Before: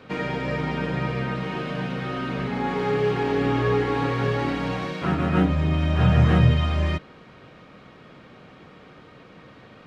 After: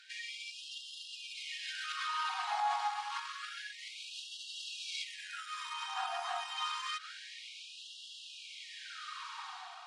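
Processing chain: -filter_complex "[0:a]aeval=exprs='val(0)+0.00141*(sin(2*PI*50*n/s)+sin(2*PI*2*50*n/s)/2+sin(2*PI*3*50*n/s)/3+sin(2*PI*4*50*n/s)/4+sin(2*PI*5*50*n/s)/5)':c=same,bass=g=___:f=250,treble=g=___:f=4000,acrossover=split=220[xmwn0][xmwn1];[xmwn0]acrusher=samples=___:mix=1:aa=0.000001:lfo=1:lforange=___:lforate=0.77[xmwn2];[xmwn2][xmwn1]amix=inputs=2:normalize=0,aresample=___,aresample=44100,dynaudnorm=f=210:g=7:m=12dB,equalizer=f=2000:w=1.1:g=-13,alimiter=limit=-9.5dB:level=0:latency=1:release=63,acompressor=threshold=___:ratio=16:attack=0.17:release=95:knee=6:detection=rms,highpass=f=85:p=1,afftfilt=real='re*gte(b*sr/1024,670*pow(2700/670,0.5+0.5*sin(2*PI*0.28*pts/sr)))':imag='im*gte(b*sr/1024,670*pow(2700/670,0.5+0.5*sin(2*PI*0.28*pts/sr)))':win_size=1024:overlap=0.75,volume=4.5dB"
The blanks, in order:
-12, 3, 17, 17, 22050, -27dB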